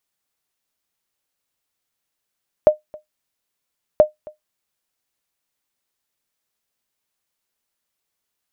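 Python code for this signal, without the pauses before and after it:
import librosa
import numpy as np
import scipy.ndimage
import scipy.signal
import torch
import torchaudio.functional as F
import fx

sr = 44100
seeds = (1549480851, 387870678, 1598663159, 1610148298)

y = fx.sonar_ping(sr, hz=610.0, decay_s=0.14, every_s=1.33, pings=2, echo_s=0.27, echo_db=-25.0, level_db=-2.0)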